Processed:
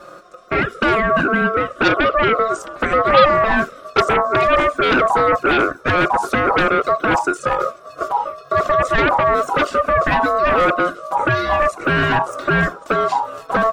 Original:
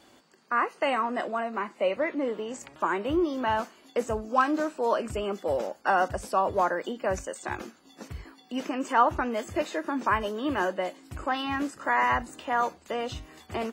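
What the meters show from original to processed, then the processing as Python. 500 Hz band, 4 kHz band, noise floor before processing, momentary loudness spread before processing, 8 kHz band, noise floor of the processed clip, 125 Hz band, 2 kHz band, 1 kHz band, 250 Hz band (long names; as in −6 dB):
+11.5 dB, +13.0 dB, −58 dBFS, 11 LU, +6.5 dB, −40 dBFS, +16.0 dB, +14.5 dB, +11.0 dB, +9.0 dB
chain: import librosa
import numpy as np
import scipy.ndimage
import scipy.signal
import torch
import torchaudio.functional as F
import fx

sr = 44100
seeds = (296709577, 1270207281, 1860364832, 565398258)

p1 = fx.low_shelf_res(x, sr, hz=700.0, db=12.5, q=1.5)
p2 = fx.env_flanger(p1, sr, rest_ms=6.0, full_db=-10.5)
p3 = fx.fold_sine(p2, sr, drive_db=17, ceiling_db=-2.5)
p4 = p2 + (p3 * 10.0 ** (-11.0 / 20.0))
p5 = p4 * np.sin(2.0 * np.pi * 890.0 * np.arange(len(p4)) / sr)
y = p5 * 10.0 ** (1.0 / 20.0)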